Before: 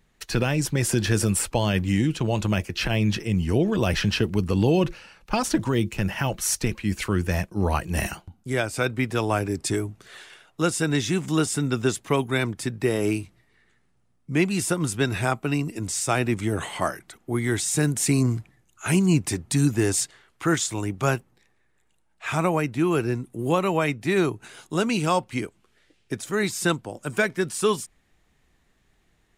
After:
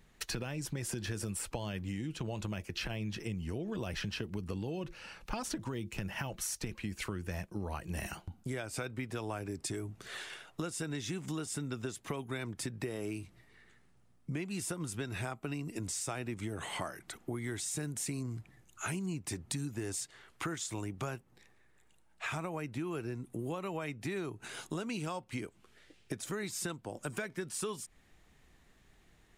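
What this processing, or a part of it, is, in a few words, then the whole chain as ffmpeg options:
serial compression, leveller first: -af "acompressor=threshold=0.0447:ratio=2,acompressor=threshold=0.0126:ratio=4,volume=1.12"

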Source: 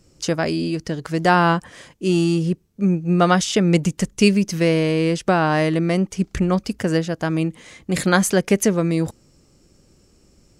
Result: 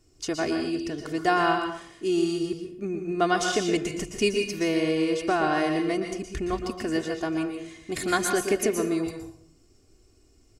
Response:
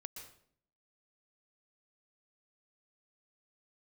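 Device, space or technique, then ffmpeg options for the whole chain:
microphone above a desk: -filter_complex "[0:a]aecho=1:1:2.8:0.73[s0];[1:a]atrim=start_sample=2205[s1];[s0][s1]afir=irnorm=-1:irlink=0,volume=0.708"

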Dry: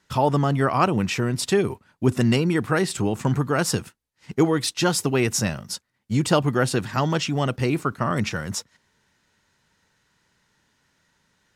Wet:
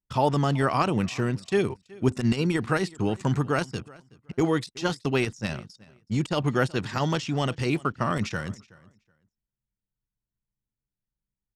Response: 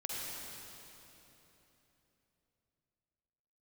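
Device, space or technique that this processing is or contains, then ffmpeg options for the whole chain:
de-esser from a sidechain: -filter_complex "[0:a]asplit=2[s0][s1];[s1]highpass=f=5300:w=0.5412,highpass=f=5300:w=1.3066,apad=whole_len=509655[s2];[s0][s2]sidechaincompress=threshold=0.01:ratio=8:attack=0.52:release=43,lowpass=9600,anlmdn=0.398,aecho=1:1:374|748:0.075|0.015,adynamicequalizer=threshold=0.01:dfrequency=2500:dqfactor=0.7:tfrequency=2500:tqfactor=0.7:attack=5:release=100:ratio=0.375:range=3.5:mode=boostabove:tftype=highshelf,volume=0.75"

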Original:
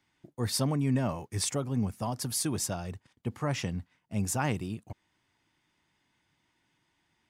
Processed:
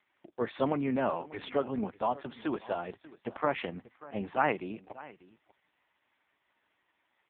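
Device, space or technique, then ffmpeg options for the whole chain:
satellite phone: -filter_complex "[0:a]asettb=1/sr,asplit=3[s0][s1][s2];[s0]atrim=end=1.894[s3];[s1]atrim=start=1.89:end=2.62,asetpts=PTS-STARTPTS,afade=t=in:d=0.004:c=qsin,afade=t=out:st=0.726:d=0.004:c=qsin,equalizer=f=77:t=o:w=0.8:g=-5.5[s4];[s2]atrim=start=2.616[s5];[s3][s4]acrossfade=d=0.004:c1=hsin:c2=qsin[s6];[s6][s5]acrossfade=d=0.004:c1=qsin:c2=hsin,highpass=390,lowpass=3000,aecho=1:1:590:0.106,volume=2.24" -ar 8000 -c:a libopencore_amrnb -b:a 4750

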